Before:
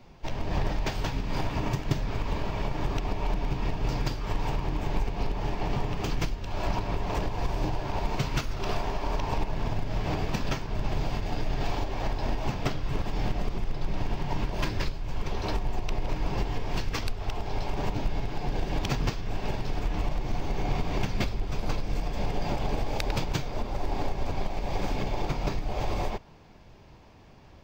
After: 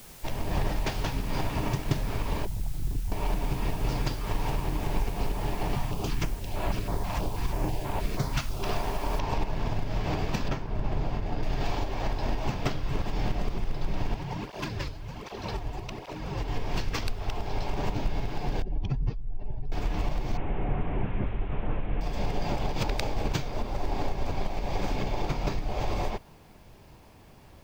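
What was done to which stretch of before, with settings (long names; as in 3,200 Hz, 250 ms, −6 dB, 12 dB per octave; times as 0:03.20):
0:02.45–0:03.12: spectral envelope exaggerated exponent 3
0:05.75–0:08.63: notch on a step sequencer 6.2 Hz 400–6,000 Hz
0:09.19: noise floor change −50 dB −68 dB
0:10.48–0:11.43: high-shelf EQ 2,500 Hz −10.5 dB
0:14.14–0:16.48: through-zero flanger with one copy inverted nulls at 1.3 Hz, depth 5.9 ms
0:18.62–0:19.72: expanding power law on the bin magnitudes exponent 1.9
0:20.37–0:22.01: linear delta modulator 16 kbit/s, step −45 dBFS
0:22.72–0:23.28: reverse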